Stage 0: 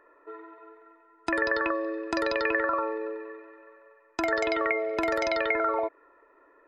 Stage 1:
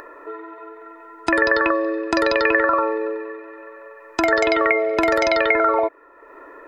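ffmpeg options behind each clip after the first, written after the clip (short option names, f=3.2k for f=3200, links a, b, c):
-af "acompressor=mode=upward:threshold=-41dB:ratio=2.5,volume=9dB"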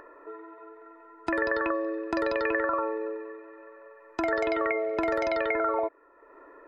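-af "highshelf=f=2.8k:g=-11.5,volume=-8dB"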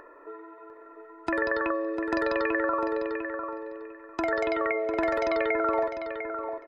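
-filter_complex "[0:a]asplit=2[a][b];[b]adelay=700,lowpass=f=3.5k:p=1,volume=-7dB,asplit=2[c][d];[d]adelay=700,lowpass=f=3.5k:p=1,volume=0.19,asplit=2[e][f];[f]adelay=700,lowpass=f=3.5k:p=1,volume=0.19[g];[a][c][e][g]amix=inputs=4:normalize=0"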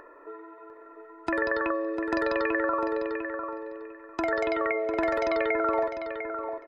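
-af anull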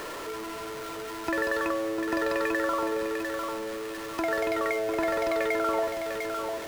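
-af "aeval=exprs='val(0)+0.5*0.0335*sgn(val(0))':c=same,volume=-3dB"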